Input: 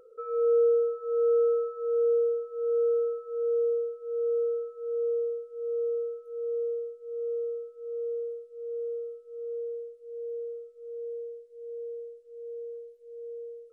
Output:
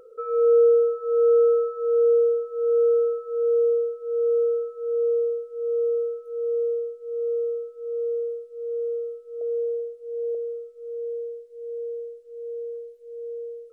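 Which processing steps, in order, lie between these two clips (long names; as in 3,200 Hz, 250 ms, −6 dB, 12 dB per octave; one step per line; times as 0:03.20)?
0:09.41–0:10.35: parametric band 670 Hz +13.5 dB 0.45 octaves
level +6 dB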